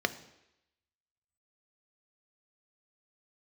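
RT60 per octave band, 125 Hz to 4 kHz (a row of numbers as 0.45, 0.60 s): 0.70, 0.80, 0.85, 0.85, 0.95, 0.90 s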